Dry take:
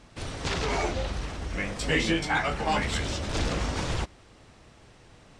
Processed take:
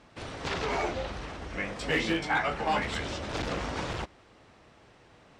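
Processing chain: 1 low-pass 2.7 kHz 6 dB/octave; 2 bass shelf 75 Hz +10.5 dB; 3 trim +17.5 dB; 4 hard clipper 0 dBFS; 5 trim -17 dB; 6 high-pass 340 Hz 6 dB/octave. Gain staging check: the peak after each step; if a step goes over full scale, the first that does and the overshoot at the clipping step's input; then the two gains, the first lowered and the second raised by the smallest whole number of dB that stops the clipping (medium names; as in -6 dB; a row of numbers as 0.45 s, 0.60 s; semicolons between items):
-14.0 dBFS, -11.5 dBFS, +6.0 dBFS, 0.0 dBFS, -17.0 dBFS, -15.0 dBFS; step 3, 6.0 dB; step 3 +11.5 dB, step 5 -11 dB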